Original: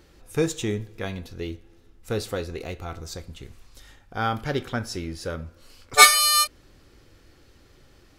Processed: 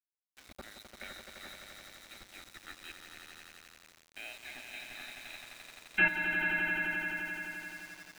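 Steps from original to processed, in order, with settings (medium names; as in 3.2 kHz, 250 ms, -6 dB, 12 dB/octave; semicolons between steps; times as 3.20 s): band-stop 1.3 kHz, Q 27; level held to a coarse grid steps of 17 dB; frequency inversion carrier 3.9 kHz; static phaser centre 700 Hz, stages 8; on a send: echo with a slow build-up 86 ms, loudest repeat 5, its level -7 dB; on the sum: small samples zeroed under -45.5 dBFS; trim -2 dB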